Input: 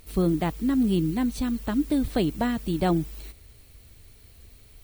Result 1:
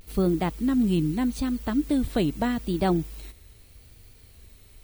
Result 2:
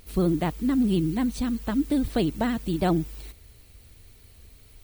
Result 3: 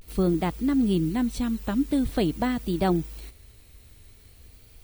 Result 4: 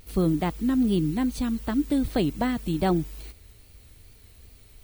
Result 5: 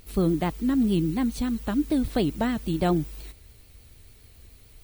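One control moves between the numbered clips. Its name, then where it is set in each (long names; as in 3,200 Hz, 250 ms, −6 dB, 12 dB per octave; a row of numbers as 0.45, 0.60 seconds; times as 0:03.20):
pitch vibrato, speed: 0.81, 16, 0.46, 2.5, 6.9 Hertz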